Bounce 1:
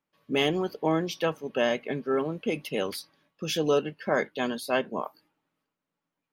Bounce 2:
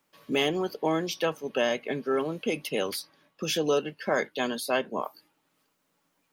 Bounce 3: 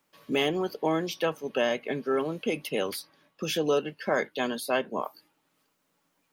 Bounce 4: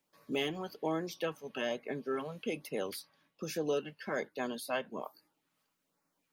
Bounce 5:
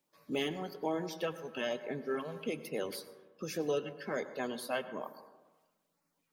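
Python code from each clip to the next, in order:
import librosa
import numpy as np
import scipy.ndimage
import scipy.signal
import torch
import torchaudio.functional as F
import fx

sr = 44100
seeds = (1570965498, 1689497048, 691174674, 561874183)

y1 = fx.bass_treble(x, sr, bass_db=-4, treble_db=5)
y1 = fx.band_squash(y1, sr, depth_pct=40)
y2 = fx.dynamic_eq(y1, sr, hz=5800.0, q=0.98, threshold_db=-44.0, ratio=4.0, max_db=-4)
y3 = fx.filter_lfo_notch(y2, sr, shape='sine', hz=1.2, low_hz=320.0, high_hz=3300.0, q=1.8)
y3 = y3 * 10.0 ** (-7.0 / 20.0)
y4 = fx.spec_quant(y3, sr, step_db=15)
y4 = fx.rev_plate(y4, sr, seeds[0], rt60_s=1.2, hf_ratio=0.25, predelay_ms=85, drr_db=12.5)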